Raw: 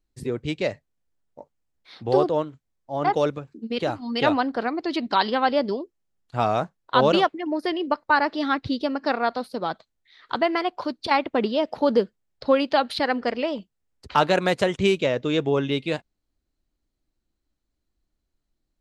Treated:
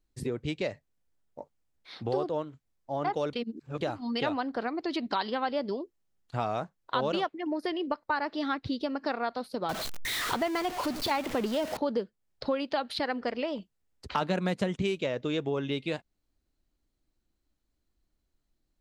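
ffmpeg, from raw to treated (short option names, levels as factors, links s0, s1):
-filter_complex "[0:a]asettb=1/sr,asplit=3[s0][s1][s2];[s0]atrim=end=9.694[s3];[s1]atrim=start=9.69:end=11.77,asetpts=PTS-STARTPTS,afade=t=in:d=0.004:c=qsin,afade=t=out:st=2.076:d=0.004:c=qsin,aeval=exprs='val(0)+0.5*0.0531*sgn(val(0))':c=same[s4];[s2]atrim=start=11.766[s5];[s3][s4]acrossfade=d=0.004:c1=hsin:c2=qsin[s6];[s6][s5]acrossfade=d=0.004:c1=qsin:c2=hsin,asettb=1/sr,asplit=3[s7][s8][s9];[s7]atrim=end=14.214[s10];[s8]atrim=start=14.21:end=14.82,asetpts=PTS-STARTPTS,afade=t=in:d=0.004:c=qsin,afade=t=out:st=0.606:d=0.004:c=qsin,equalizer=f=200:t=o:w=0.77:g=11[s11];[s9]atrim=start=14.816[s12];[s10][s11]acrossfade=d=0.004:c1=hsin:c2=qsin[s13];[s13][s12]acrossfade=d=0.004:c1=qsin:c2=hsin,asplit=3[s14][s15][s16];[s14]atrim=end=3.332[s17];[s15]atrim=start=3.328:end=3.812,asetpts=PTS-STARTPTS,areverse[s18];[s16]atrim=start=3.808[s19];[s17][s18]acrossfade=d=0.004:c1=hsin:c2=hsin[s20];[s20][s19]acrossfade=d=0.004:c1=hsin:c2=hsin,acompressor=threshold=0.0282:ratio=2.5"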